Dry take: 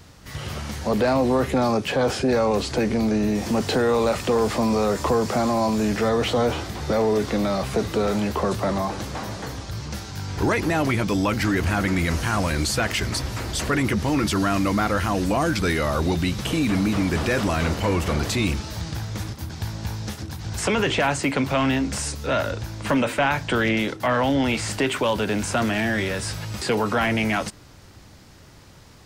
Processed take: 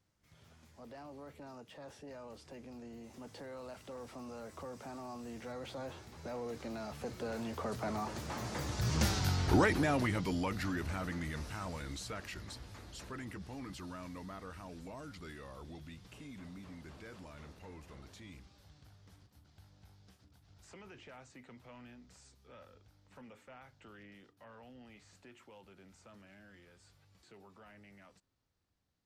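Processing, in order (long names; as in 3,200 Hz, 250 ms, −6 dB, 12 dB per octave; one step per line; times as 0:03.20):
source passing by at 0:09.10, 32 m/s, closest 6.8 metres
level +2 dB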